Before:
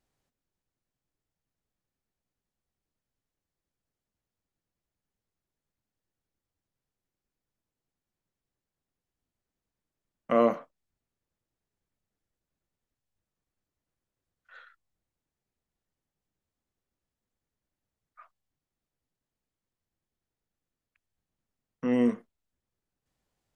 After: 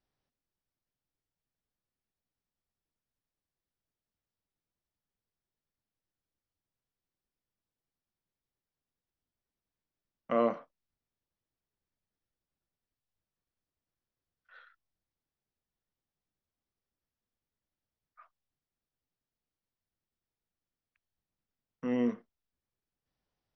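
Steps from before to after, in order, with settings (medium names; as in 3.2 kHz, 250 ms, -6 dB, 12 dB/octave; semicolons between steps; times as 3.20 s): Chebyshev low-pass 5.9 kHz, order 8; trim -4.5 dB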